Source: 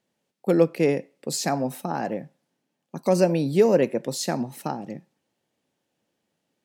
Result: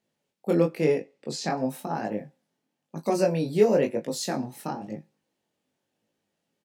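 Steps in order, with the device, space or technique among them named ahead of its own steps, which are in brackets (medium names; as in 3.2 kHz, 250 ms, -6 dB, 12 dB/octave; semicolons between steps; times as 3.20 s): double-tracked vocal (doubling 19 ms -10 dB; chorus 0.99 Hz, delay 18.5 ms, depth 5.5 ms); 0.99–1.56 s: low-pass 9.1 kHz -> 4.4 kHz 12 dB/octave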